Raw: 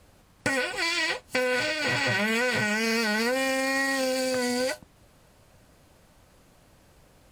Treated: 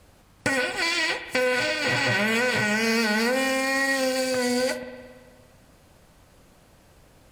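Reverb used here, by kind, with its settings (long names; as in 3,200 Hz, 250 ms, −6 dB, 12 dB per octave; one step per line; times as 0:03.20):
spring reverb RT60 1.6 s, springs 57 ms, chirp 35 ms, DRR 10 dB
level +2 dB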